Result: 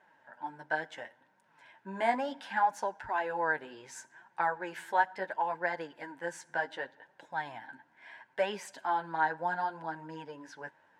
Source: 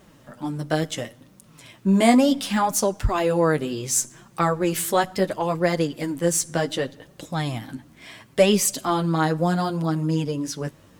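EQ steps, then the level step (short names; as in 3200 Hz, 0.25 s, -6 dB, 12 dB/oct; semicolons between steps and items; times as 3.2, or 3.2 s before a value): double band-pass 1200 Hz, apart 0.77 oct; +1.5 dB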